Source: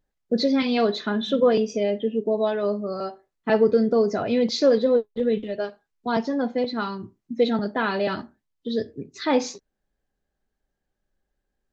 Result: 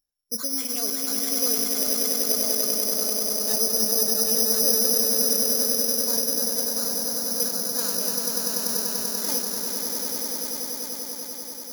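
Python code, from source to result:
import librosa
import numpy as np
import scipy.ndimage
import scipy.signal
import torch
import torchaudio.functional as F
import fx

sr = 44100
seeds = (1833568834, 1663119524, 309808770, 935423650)

y = fx.echo_swell(x, sr, ms=97, loudest=8, wet_db=-5.5)
y = (np.kron(y[::8], np.eye(8)[0]) * 8)[:len(y)]
y = y * 10.0 ** (-16.5 / 20.0)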